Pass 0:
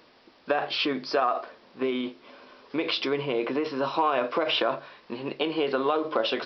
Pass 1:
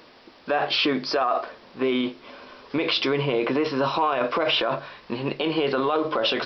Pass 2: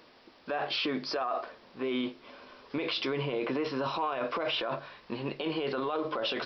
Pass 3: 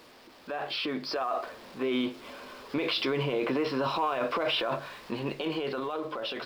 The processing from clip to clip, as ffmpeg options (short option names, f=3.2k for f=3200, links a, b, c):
-af "alimiter=limit=-19.5dB:level=0:latency=1:release=16,asubboost=boost=2.5:cutoff=160,volume=6.5dB"
-af "alimiter=limit=-16dB:level=0:latency=1:release=13,volume=-7dB"
-af "aeval=exprs='val(0)+0.5*0.00316*sgn(val(0))':c=same,dynaudnorm=f=210:g=11:m=5.5dB,volume=-3dB"